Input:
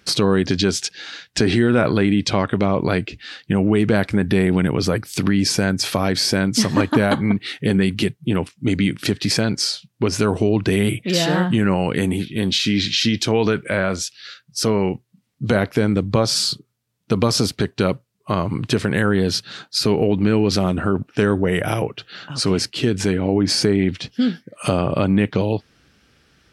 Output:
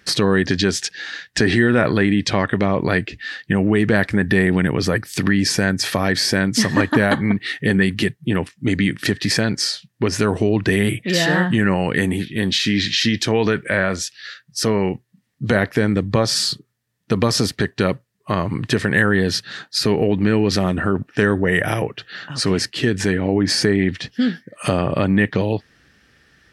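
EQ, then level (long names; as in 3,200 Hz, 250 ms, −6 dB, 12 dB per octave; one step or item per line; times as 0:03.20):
parametric band 1,800 Hz +12.5 dB 0.22 octaves
0.0 dB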